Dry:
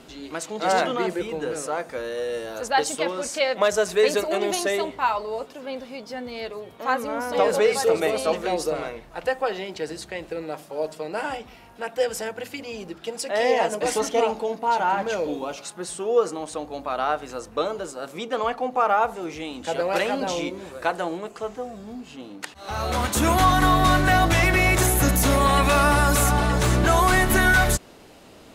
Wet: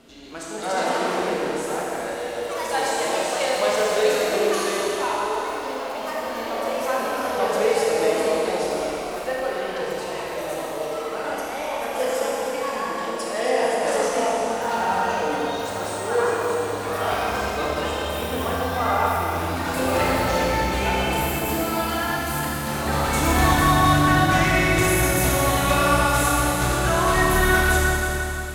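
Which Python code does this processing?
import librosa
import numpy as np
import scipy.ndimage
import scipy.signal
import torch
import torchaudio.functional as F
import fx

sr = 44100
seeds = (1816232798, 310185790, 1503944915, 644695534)

y = fx.echo_pitch(x, sr, ms=287, semitones=3, count=3, db_per_echo=-6.0)
y = fx.rev_schroeder(y, sr, rt60_s=3.5, comb_ms=27, drr_db=-5.0)
y = F.gain(torch.from_numpy(y), -6.0).numpy()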